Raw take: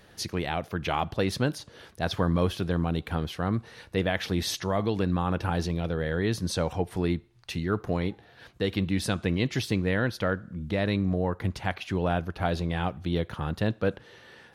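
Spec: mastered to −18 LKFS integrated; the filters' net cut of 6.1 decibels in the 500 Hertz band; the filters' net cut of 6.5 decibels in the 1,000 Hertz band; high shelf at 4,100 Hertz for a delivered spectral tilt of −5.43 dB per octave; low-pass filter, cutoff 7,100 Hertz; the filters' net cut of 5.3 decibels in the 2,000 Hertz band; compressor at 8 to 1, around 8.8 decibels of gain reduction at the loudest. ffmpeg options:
ffmpeg -i in.wav -af "lowpass=7100,equalizer=frequency=500:width_type=o:gain=-6,equalizer=frequency=1000:width_type=o:gain=-5.5,equalizer=frequency=2000:width_type=o:gain=-5.5,highshelf=frequency=4100:gain=4,acompressor=threshold=-32dB:ratio=8,volume=20dB" out.wav

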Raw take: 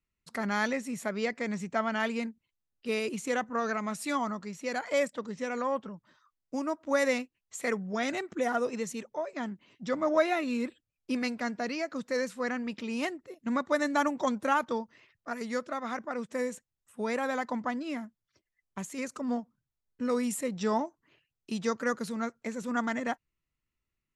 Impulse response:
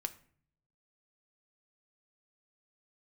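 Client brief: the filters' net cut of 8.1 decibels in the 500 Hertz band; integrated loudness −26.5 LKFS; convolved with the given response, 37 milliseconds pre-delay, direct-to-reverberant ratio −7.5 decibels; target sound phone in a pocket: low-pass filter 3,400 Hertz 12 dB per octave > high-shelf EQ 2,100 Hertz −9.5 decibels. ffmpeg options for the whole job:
-filter_complex "[0:a]equalizer=frequency=500:width_type=o:gain=-9,asplit=2[link_01][link_02];[1:a]atrim=start_sample=2205,adelay=37[link_03];[link_02][link_03]afir=irnorm=-1:irlink=0,volume=8dB[link_04];[link_01][link_04]amix=inputs=2:normalize=0,lowpass=3400,highshelf=frequency=2100:gain=-9.5,volume=2dB"

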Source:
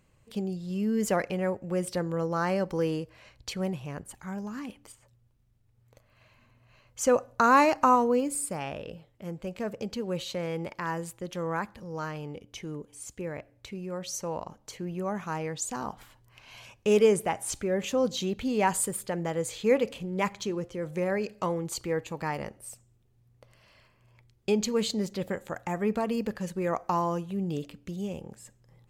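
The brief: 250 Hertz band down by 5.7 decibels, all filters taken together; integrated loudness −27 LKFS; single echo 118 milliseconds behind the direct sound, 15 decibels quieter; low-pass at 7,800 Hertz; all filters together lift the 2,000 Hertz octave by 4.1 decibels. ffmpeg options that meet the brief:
ffmpeg -i in.wav -af "lowpass=7800,equalizer=frequency=250:width_type=o:gain=-8,equalizer=frequency=2000:width_type=o:gain=5.5,aecho=1:1:118:0.178,volume=3.5dB" out.wav

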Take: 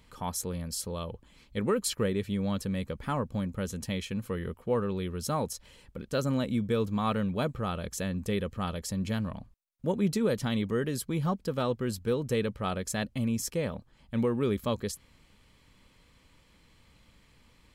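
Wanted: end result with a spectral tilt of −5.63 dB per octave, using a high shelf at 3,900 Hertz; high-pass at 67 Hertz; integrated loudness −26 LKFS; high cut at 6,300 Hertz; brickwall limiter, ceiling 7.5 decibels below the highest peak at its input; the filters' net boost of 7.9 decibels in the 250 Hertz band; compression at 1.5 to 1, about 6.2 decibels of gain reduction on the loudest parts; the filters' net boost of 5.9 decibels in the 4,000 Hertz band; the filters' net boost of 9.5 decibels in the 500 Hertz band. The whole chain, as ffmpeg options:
ffmpeg -i in.wav -af "highpass=67,lowpass=6300,equalizer=frequency=250:width_type=o:gain=8,equalizer=frequency=500:width_type=o:gain=8.5,highshelf=frequency=3900:gain=5,equalizer=frequency=4000:width_type=o:gain=5,acompressor=threshold=-32dB:ratio=1.5,volume=6.5dB,alimiter=limit=-15.5dB:level=0:latency=1" out.wav

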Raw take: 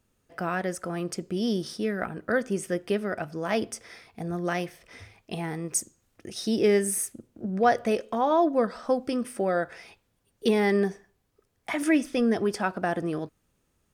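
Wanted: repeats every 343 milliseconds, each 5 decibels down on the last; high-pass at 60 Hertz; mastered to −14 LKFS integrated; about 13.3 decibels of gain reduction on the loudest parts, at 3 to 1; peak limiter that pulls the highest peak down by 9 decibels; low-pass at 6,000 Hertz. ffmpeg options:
ffmpeg -i in.wav -af "highpass=60,lowpass=6000,acompressor=threshold=-36dB:ratio=3,alimiter=level_in=7dB:limit=-24dB:level=0:latency=1,volume=-7dB,aecho=1:1:343|686|1029|1372|1715|2058|2401:0.562|0.315|0.176|0.0988|0.0553|0.031|0.0173,volume=26dB" out.wav

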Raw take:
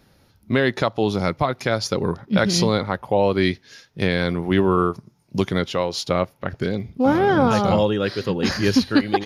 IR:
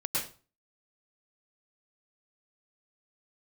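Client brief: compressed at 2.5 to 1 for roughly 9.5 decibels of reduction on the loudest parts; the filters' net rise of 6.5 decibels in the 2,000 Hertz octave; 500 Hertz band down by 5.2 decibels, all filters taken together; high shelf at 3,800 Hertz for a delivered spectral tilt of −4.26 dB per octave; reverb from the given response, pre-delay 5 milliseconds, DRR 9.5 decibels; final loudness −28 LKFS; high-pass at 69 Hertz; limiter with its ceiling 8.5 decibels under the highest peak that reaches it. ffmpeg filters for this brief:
-filter_complex "[0:a]highpass=69,equalizer=frequency=500:width_type=o:gain=-7,equalizer=frequency=2000:width_type=o:gain=7,highshelf=frequency=3800:gain=7,acompressor=threshold=-27dB:ratio=2.5,alimiter=limit=-17dB:level=0:latency=1,asplit=2[link_01][link_02];[1:a]atrim=start_sample=2205,adelay=5[link_03];[link_02][link_03]afir=irnorm=-1:irlink=0,volume=-16dB[link_04];[link_01][link_04]amix=inputs=2:normalize=0,volume=1.5dB"

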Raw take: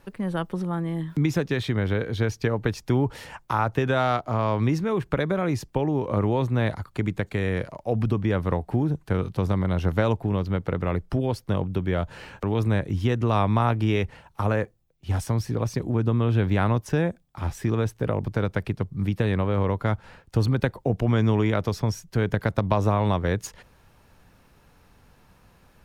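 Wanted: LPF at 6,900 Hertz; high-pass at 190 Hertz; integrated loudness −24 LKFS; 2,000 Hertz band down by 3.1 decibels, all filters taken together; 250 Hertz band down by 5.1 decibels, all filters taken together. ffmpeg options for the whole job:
ffmpeg -i in.wav -af "highpass=190,lowpass=6900,equalizer=frequency=250:width_type=o:gain=-4.5,equalizer=frequency=2000:width_type=o:gain=-4,volume=6dB" out.wav

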